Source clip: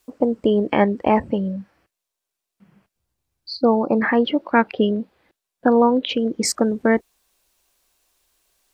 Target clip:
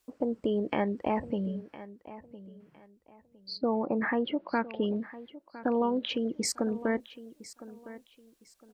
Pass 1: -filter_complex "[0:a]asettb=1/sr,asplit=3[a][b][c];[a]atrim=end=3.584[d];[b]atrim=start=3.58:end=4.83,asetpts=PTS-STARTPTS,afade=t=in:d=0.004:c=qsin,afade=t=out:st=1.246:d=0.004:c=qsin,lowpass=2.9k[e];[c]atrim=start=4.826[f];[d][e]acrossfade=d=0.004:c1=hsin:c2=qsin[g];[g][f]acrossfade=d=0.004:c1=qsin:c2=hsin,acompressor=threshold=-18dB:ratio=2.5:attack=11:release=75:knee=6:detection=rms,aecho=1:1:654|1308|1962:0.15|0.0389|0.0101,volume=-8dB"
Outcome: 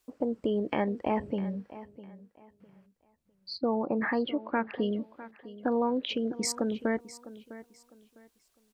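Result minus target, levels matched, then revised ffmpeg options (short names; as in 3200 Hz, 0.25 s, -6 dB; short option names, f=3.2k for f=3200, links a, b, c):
echo 0.355 s early
-filter_complex "[0:a]asettb=1/sr,asplit=3[a][b][c];[a]atrim=end=3.584[d];[b]atrim=start=3.58:end=4.83,asetpts=PTS-STARTPTS,afade=t=in:d=0.004:c=qsin,afade=t=out:st=1.246:d=0.004:c=qsin,lowpass=2.9k[e];[c]atrim=start=4.826[f];[d][e]acrossfade=d=0.004:c1=hsin:c2=qsin[g];[g][f]acrossfade=d=0.004:c1=qsin:c2=hsin,acompressor=threshold=-18dB:ratio=2.5:attack=11:release=75:knee=6:detection=rms,aecho=1:1:1009|2018|3027:0.15|0.0389|0.0101,volume=-8dB"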